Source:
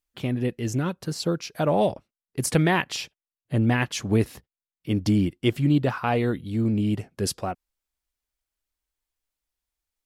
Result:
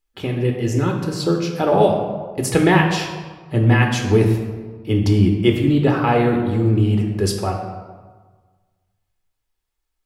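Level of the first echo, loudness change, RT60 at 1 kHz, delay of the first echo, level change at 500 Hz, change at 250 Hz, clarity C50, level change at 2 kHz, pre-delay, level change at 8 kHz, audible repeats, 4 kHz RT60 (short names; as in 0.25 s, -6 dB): none, +7.0 dB, 1.5 s, none, +8.5 dB, +6.0 dB, 5.0 dB, +6.5 dB, 3 ms, +2.5 dB, none, 0.90 s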